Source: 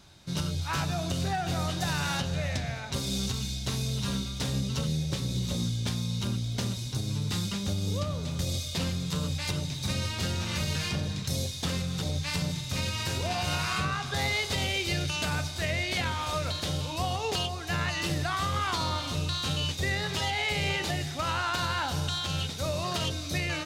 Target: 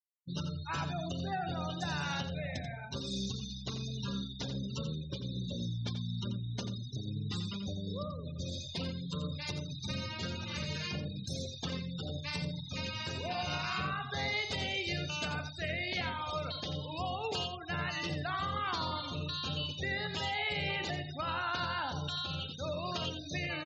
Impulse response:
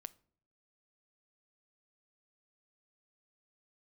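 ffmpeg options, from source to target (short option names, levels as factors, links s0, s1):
-filter_complex "[0:a]afftfilt=real='re*gte(hypot(re,im),0.0251)':imag='im*gte(hypot(re,im),0.0251)':win_size=1024:overlap=0.75,highpass=f=120:p=1,asplit=2[s0][s1];[s1]aecho=0:1:87:0.335[s2];[s0][s2]amix=inputs=2:normalize=0,volume=0.562"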